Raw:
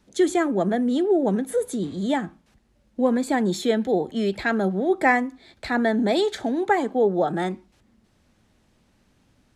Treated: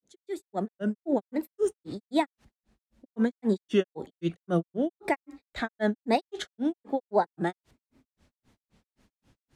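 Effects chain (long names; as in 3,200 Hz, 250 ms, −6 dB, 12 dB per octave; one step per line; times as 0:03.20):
fade in at the beginning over 1.01 s
granular cloud 162 ms, grains 3.8 per second, pitch spread up and down by 3 semitones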